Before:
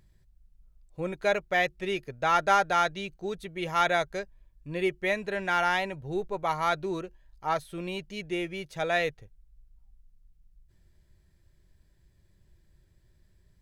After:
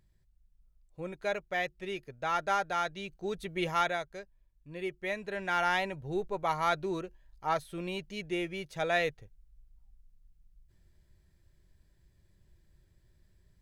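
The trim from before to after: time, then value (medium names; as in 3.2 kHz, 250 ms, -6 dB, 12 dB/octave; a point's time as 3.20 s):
2.84 s -7 dB
3.59 s +2 dB
4.03 s -10 dB
4.68 s -10 dB
5.79 s -2 dB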